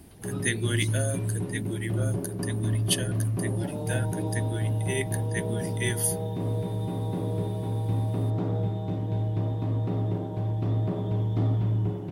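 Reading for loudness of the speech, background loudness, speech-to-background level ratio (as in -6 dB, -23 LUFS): -32.5 LUFS, -29.5 LUFS, -3.0 dB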